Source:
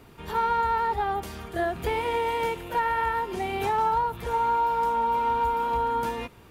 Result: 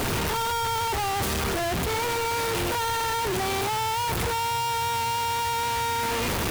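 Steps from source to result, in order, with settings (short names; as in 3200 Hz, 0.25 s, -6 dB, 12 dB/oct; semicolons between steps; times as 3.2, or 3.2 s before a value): infinite clipping; band noise 83–130 Hz -41 dBFS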